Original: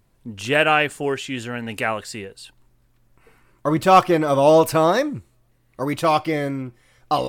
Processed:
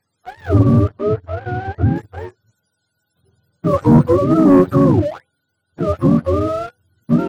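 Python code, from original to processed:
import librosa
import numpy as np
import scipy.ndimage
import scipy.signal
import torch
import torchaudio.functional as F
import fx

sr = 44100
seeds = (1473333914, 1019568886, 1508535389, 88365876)

y = fx.octave_mirror(x, sr, pivot_hz=420.0)
y = fx.leveller(y, sr, passes=2)
y = fx.air_absorb(y, sr, metres=130.0, at=(0.88, 1.96))
y = y * 10.0 ** (-1.0 / 20.0)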